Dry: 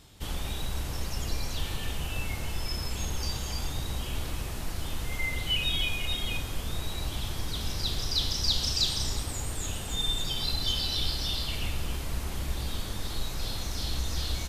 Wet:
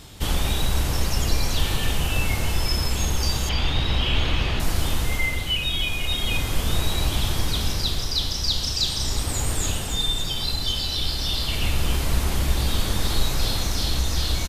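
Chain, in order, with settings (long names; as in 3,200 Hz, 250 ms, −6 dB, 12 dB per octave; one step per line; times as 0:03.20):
speech leveller within 4 dB 0.5 s
0:03.49–0:04.60: low-pass with resonance 3,200 Hz, resonance Q 2.2
single-tap delay 1,191 ms −18 dB
level +7 dB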